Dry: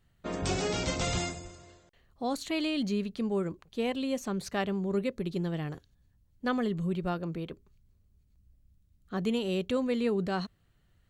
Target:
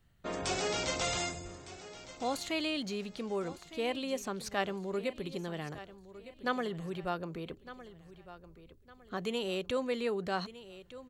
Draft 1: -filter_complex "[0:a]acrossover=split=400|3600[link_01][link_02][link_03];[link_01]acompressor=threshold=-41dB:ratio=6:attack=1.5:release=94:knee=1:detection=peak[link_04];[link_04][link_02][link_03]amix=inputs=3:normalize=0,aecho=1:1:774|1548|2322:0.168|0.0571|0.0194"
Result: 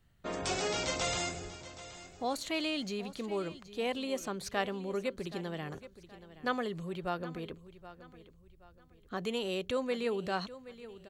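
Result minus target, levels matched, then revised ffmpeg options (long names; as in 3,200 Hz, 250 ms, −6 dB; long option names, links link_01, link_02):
echo 434 ms early
-filter_complex "[0:a]acrossover=split=400|3600[link_01][link_02][link_03];[link_01]acompressor=threshold=-41dB:ratio=6:attack=1.5:release=94:knee=1:detection=peak[link_04];[link_04][link_02][link_03]amix=inputs=3:normalize=0,aecho=1:1:1208|2416|3624:0.168|0.0571|0.0194"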